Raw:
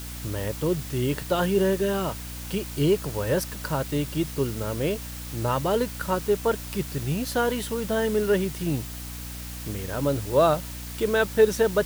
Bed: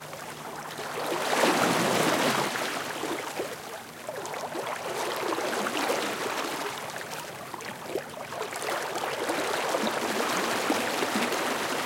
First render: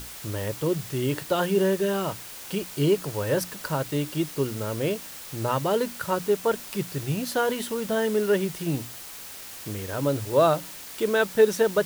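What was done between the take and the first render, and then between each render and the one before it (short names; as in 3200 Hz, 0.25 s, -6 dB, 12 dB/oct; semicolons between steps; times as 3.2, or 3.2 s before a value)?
notches 60/120/180/240/300 Hz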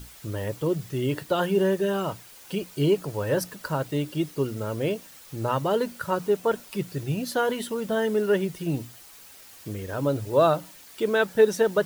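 denoiser 9 dB, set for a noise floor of -41 dBFS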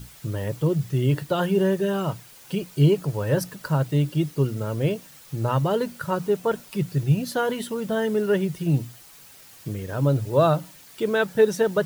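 bell 140 Hz +10 dB 0.68 oct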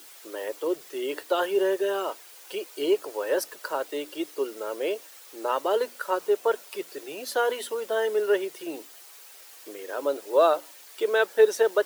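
steep high-pass 350 Hz 36 dB/oct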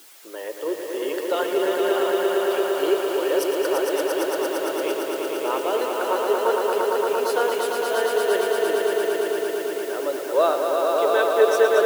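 swelling echo 0.114 s, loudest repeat 5, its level -4.5 dB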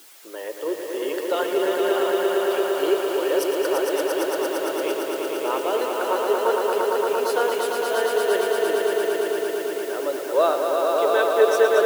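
nothing audible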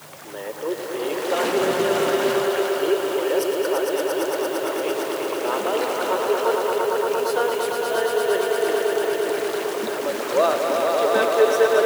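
add bed -3 dB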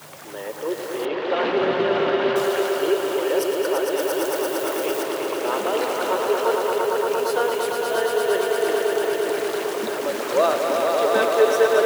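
1.05–2.36 LPF 3800 Hz 24 dB/oct; 3.99–5.03 switching spikes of -27 dBFS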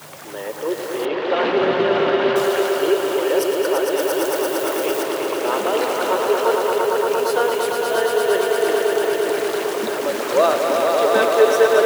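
gain +3 dB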